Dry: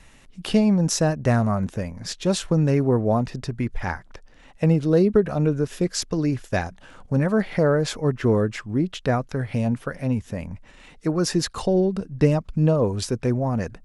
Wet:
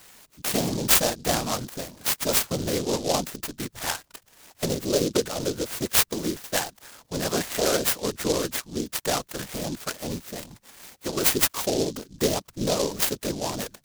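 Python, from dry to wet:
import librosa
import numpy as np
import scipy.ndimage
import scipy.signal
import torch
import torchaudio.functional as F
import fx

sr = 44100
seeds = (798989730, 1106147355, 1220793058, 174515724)

y = fx.tilt_eq(x, sr, slope=3.5)
y = fx.whisperise(y, sr, seeds[0])
y = fx.low_shelf(y, sr, hz=130.0, db=-5.0)
y = fx.noise_mod_delay(y, sr, seeds[1], noise_hz=4900.0, depth_ms=0.12)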